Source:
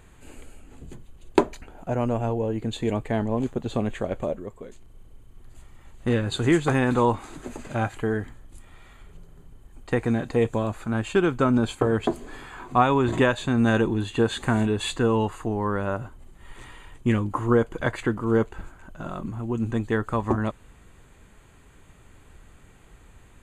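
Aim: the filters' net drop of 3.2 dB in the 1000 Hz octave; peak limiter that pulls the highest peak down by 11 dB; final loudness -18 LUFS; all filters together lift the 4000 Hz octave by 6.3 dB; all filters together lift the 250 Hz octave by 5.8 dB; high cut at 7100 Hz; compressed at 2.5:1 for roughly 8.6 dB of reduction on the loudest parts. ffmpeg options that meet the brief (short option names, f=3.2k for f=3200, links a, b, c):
-af "lowpass=7.1k,equalizer=f=250:t=o:g=7,equalizer=f=1k:t=o:g=-5,equalizer=f=4k:t=o:g=8,acompressor=threshold=-22dB:ratio=2.5,volume=10dB,alimiter=limit=-7.5dB:level=0:latency=1"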